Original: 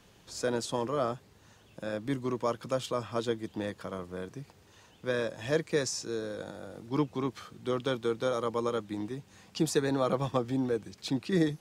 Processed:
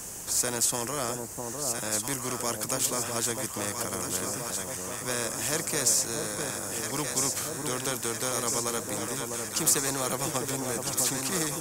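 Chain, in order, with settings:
high shelf with overshoot 5,400 Hz +14 dB, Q 3
delay that swaps between a low-pass and a high-pass 653 ms, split 880 Hz, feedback 74%, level −6 dB
every bin compressed towards the loudest bin 2 to 1
level −4 dB

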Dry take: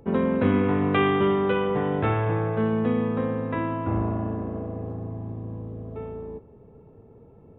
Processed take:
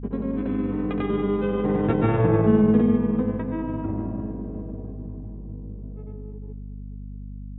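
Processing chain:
source passing by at 0:02.38, 11 m/s, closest 3.2 metres
parametric band 240 Hz +11 dB 2 octaves
in parallel at +1.5 dB: downward compressor, threshold −31 dBFS, peak gain reduction 16.5 dB
on the sum: granular cloud 100 ms, pitch spread up and down by 0 semitones
downward expander −51 dBFS
mains hum 50 Hz, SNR 11 dB
on a send: echo machine with several playback heads 215 ms, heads first and second, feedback 44%, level −23.5 dB

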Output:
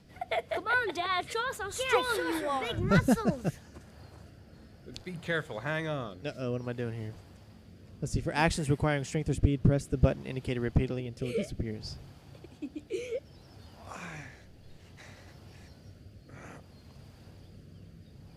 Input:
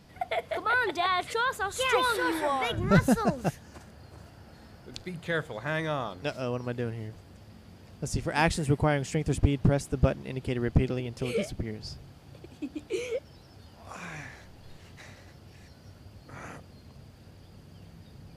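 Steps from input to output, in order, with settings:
rotating-speaker cabinet horn 5 Hz, later 0.6 Hz, at 0:03.25

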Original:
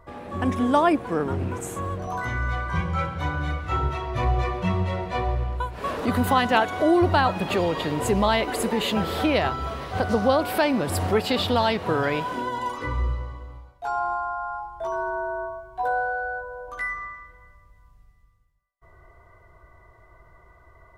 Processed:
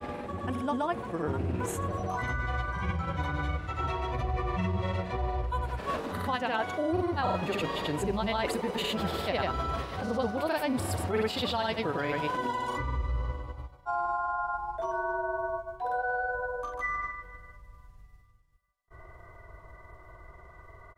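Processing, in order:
reversed playback
downward compressor 4 to 1, threshold −31 dBFS, peak gain reduction 14.5 dB
reversed playback
granular cloud, pitch spread up and down by 0 semitones
level +3.5 dB

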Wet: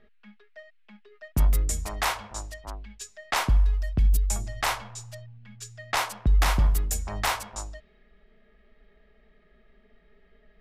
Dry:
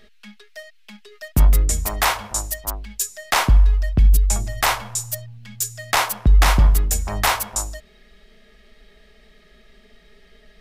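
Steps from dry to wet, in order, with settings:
low-pass that shuts in the quiet parts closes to 1,800 Hz, open at −14 dBFS
level −7.5 dB

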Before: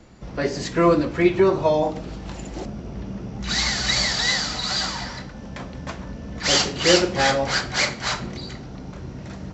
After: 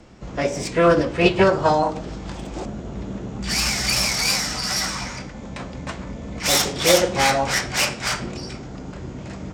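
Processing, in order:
phase distortion by the signal itself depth 0.08 ms
formants moved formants +3 semitones
level +1.5 dB

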